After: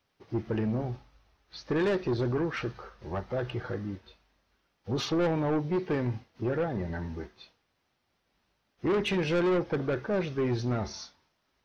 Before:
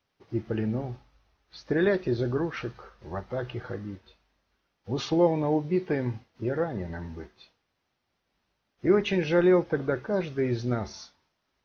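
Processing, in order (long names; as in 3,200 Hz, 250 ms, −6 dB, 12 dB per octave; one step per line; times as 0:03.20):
soft clipping −25 dBFS, distortion −9 dB
level +2 dB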